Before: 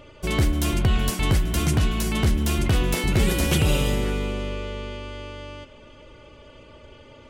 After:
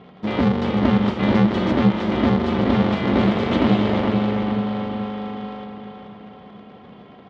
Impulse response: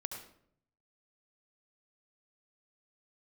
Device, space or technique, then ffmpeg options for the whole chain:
ring modulator pedal into a guitar cabinet: -filter_complex "[0:a]asettb=1/sr,asplit=3[link_01][link_02][link_03];[link_01]atrim=end=1.224[link_04];[link_02]atrim=start=1.22:end=1.72,asetpts=PTS-STARTPTS,afade=type=in:duration=0.004:curve=qsin,afade=type=out:start_time=0.496:duration=0.004:curve=qsin,aecho=1:1:5.1:0.83,atrim=end_sample=22050[link_05];[link_03]atrim=start=1.716[link_06];[link_04][link_05]acrossfade=duration=0.004:curve1=hsin:curve2=qsin[link_07];[link_07][link_06]acrossfade=duration=0.004:curve1=qsin:curve2=hsin,aeval=exprs='val(0)*sgn(sin(2*PI*160*n/s))':channel_layout=same,highpass=96,equalizer=frequency=100:width_type=q:width=4:gain=-6,equalizer=frequency=190:width_type=q:width=4:gain=8,equalizer=frequency=1600:width_type=q:width=4:gain=-5,equalizer=frequency=2600:width_type=q:width=4:gain=-8,lowpass=frequency=3400:width=0.5412,lowpass=frequency=3400:width=1.3066,asplit=2[link_08][link_09];[link_09]adelay=431,lowpass=frequency=4700:poles=1,volume=-6dB,asplit=2[link_10][link_11];[link_11]adelay=431,lowpass=frequency=4700:poles=1,volume=0.5,asplit=2[link_12][link_13];[link_13]adelay=431,lowpass=frequency=4700:poles=1,volume=0.5,asplit=2[link_14][link_15];[link_15]adelay=431,lowpass=frequency=4700:poles=1,volume=0.5,asplit=2[link_16][link_17];[link_17]adelay=431,lowpass=frequency=4700:poles=1,volume=0.5,asplit=2[link_18][link_19];[link_19]adelay=431,lowpass=frequency=4700:poles=1,volume=0.5[link_20];[link_08][link_10][link_12][link_14][link_16][link_18][link_20]amix=inputs=7:normalize=0,volume=1dB"

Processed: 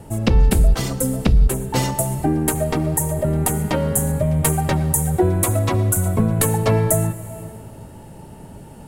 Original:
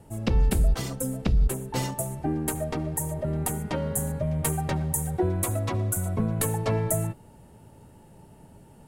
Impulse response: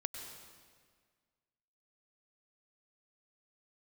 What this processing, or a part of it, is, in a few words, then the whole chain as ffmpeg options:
ducked reverb: -filter_complex "[0:a]asplit=3[link_01][link_02][link_03];[1:a]atrim=start_sample=2205[link_04];[link_02][link_04]afir=irnorm=-1:irlink=0[link_05];[link_03]apad=whole_len=391538[link_06];[link_05][link_06]sidechaincompress=threshold=-34dB:ratio=8:attack=45:release=419,volume=-0.5dB[link_07];[link_01][link_07]amix=inputs=2:normalize=0,volume=6.5dB"

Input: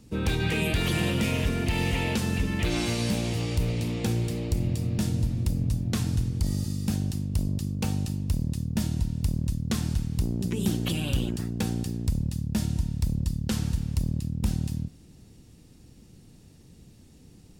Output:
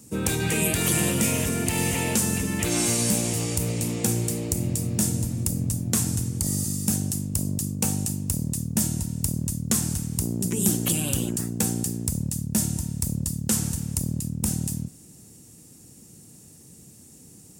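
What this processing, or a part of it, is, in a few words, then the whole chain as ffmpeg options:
budget condenser microphone: -af "highpass=110,highshelf=frequency=5600:width_type=q:width=1.5:gain=12,volume=2.5dB"

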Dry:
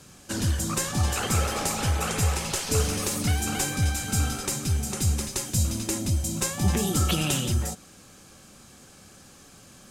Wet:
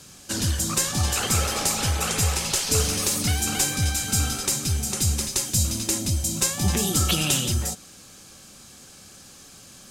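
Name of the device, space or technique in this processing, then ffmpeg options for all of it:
presence and air boost: -af "equalizer=frequency=4500:width_type=o:width=1.7:gain=5.5,highshelf=frequency=9200:gain=7"

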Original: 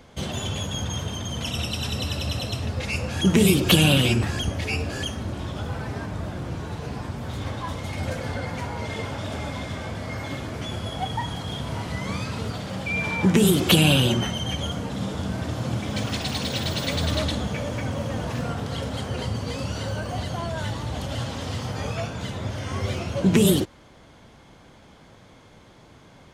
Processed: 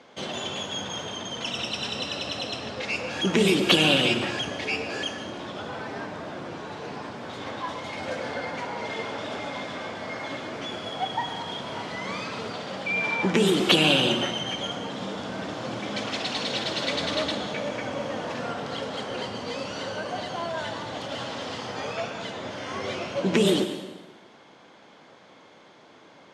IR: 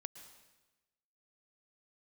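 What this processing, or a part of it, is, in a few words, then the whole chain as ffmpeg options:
supermarket ceiling speaker: -filter_complex "[0:a]highpass=300,lowpass=5400[link_01];[1:a]atrim=start_sample=2205[link_02];[link_01][link_02]afir=irnorm=-1:irlink=0,asettb=1/sr,asplit=3[link_03][link_04][link_05];[link_03]atrim=end=1.094[link_06];[link_04]atrim=start=1.09:end=2.99,asetpts=PTS-STARTPTS,afade=type=in:duration=0.004:curve=qsin,afade=type=out:start_time=1.896:duration=0.004:curve=qsin,lowpass=11000[link_07];[link_05]atrim=start=2.986[link_08];[link_06][link_07]acrossfade=duration=0.004:curve1=hsin:curve2=qsin[link_09];[link_09][link_08]acrossfade=duration=0.004:curve1=qsin:curve2=hsin,volume=5.5dB"

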